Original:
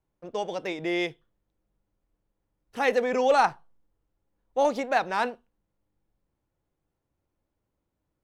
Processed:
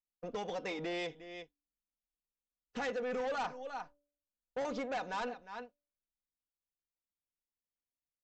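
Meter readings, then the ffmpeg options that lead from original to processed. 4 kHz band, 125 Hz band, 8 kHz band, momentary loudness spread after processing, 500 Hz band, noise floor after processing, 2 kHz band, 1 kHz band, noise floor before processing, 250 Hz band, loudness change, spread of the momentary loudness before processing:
-9.0 dB, -7.0 dB, -10.0 dB, 13 LU, -12.0 dB, under -85 dBFS, -11.5 dB, -13.5 dB, -81 dBFS, -10.0 dB, -13.0 dB, 12 LU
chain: -af "aecho=1:1:355:0.106,agate=range=0.0224:threshold=0.00631:ratio=3:detection=peak,aecho=1:1:4.1:0.55,bandreject=f=289.7:t=h:w=4,bandreject=f=579.4:t=h:w=4,acompressor=threshold=0.00631:ratio=2,aresample=16000,asoftclip=type=tanh:threshold=0.015,aresample=44100,volume=1.58"

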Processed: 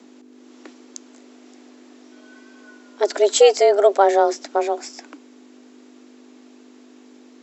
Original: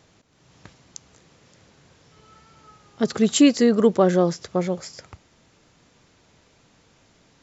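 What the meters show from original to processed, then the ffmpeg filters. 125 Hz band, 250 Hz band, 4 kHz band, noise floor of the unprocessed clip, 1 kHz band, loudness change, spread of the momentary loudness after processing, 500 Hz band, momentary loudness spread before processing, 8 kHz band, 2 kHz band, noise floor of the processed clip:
under -40 dB, -12.0 dB, +2.5 dB, -60 dBFS, +10.5 dB, +2.5 dB, 12 LU, +6.0 dB, 12 LU, no reading, +3.5 dB, -48 dBFS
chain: -af "aeval=exprs='val(0)+0.00355*(sin(2*PI*50*n/s)+sin(2*PI*2*50*n/s)/2+sin(2*PI*3*50*n/s)/3+sin(2*PI*4*50*n/s)/4+sin(2*PI*5*50*n/s)/5)':c=same,afreqshift=200,volume=1.33"

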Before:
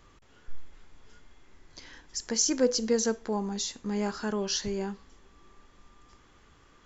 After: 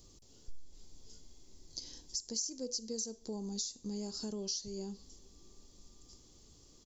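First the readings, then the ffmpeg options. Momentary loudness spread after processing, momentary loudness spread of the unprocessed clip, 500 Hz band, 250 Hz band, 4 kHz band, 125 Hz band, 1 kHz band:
21 LU, 13 LU, -14.5 dB, -11.0 dB, -6.5 dB, -8.5 dB, -19.0 dB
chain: -af "firequalizer=gain_entry='entry(330,0);entry(1500,-21);entry(4600,10)':delay=0.05:min_phase=1,acompressor=threshold=0.0158:ratio=5,volume=0.841"

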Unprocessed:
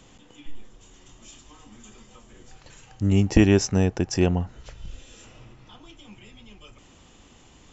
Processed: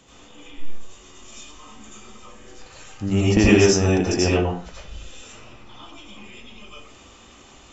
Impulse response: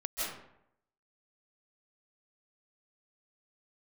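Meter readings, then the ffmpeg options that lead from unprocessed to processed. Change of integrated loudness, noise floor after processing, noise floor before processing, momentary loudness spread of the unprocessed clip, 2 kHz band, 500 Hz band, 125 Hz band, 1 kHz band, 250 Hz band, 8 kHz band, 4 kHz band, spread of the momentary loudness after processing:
+3.0 dB, -48 dBFS, -53 dBFS, 10 LU, +7.5 dB, +6.0 dB, +1.0 dB, +6.5 dB, +2.0 dB, no reading, +7.0 dB, 13 LU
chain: -filter_complex "[0:a]lowshelf=f=100:g=-11.5[s0];[1:a]atrim=start_sample=2205,asetrate=83790,aresample=44100[s1];[s0][s1]afir=irnorm=-1:irlink=0,volume=2.51"

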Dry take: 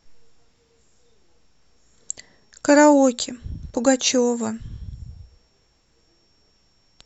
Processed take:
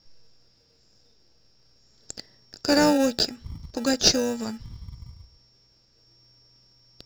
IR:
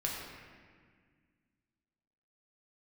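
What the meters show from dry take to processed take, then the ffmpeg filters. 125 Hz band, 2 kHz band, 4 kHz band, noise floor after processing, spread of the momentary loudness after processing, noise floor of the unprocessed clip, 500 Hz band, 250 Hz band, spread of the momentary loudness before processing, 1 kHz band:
-1.5 dB, -5.0 dB, +4.0 dB, -62 dBFS, 21 LU, -63 dBFS, -7.0 dB, -5.5 dB, 21 LU, -8.0 dB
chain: -filter_complex "[0:a]lowpass=f=5100:t=q:w=12,asplit=2[s0][s1];[s1]acrusher=samples=41:mix=1:aa=0.000001,volume=0.447[s2];[s0][s2]amix=inputs=2:normalize=0,volume=0.398"

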